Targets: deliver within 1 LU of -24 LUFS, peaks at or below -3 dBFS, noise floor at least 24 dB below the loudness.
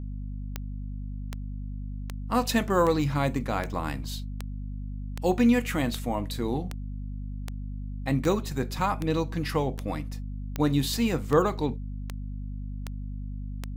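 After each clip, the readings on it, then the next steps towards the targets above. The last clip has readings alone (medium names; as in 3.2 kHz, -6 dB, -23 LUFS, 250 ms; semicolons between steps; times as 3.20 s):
clicks found 18; hum 50 Hz; highest harmonic 250 Hz; hum level -32 dBFS; loudness -29.5 LUFS; peak level -10.5 dBFS; loudness target -24.0 LUFS
-> de-click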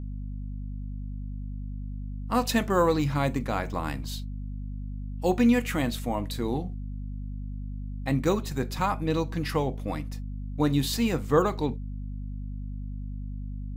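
clicks found 0; hum 50 Hz; highest harmonic 250 Hz; hum level -32 dBFS
-> hum notches 50/100/150/200/250 Hz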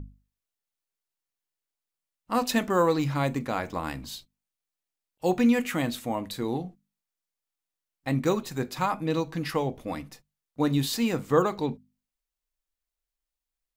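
hum not found; loudness -27.5 LUFS; peak level -9.0 dBFS; loudness target -24.0 LUFS
-> trim +3.5 dB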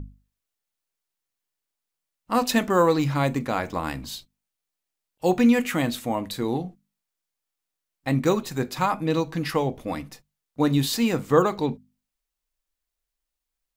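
loudness -24.0 LUFS; peak level -5.5 dBFS; noise floor -85 dBFS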